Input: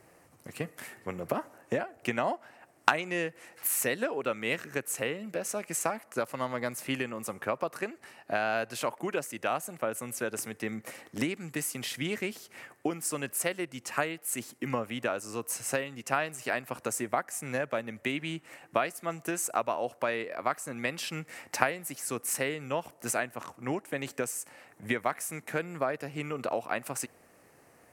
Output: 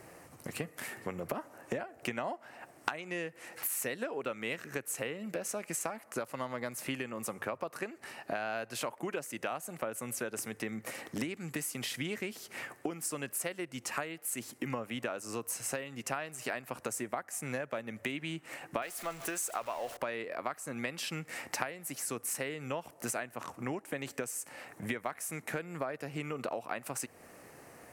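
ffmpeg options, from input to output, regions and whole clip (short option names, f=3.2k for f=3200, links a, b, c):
-filter_complex "[0:a]asettb=1/sr,asplit=3[a][b][c];[a]atrim=end=18.824[d];[b]atrim=start=18.82:end=19.97,asetpts=PTS-STARTPTS,afade=t=in:d=0.004:c=qsin,afade=t=out:st=1.146:d=0.004:c=qsin,aeval=exprs='val(0)+0.5*0.0126*sgn(val(0))':c=same,equalizer=f=160:w=0.46:g=-10[e];[c]atrim=start=19.966[f];[d][e]acrossfade=d=0.004:c1=hsin:c2=qsin[g];[g][f]acrossfade=d=0.004:c1=qsin:c2=hsin,bandreject=f=50:t=h:w=6,bandreject=f=100:t=h:w=6,acompressor=threshold=-43dB:ratio=3,volume=6dB"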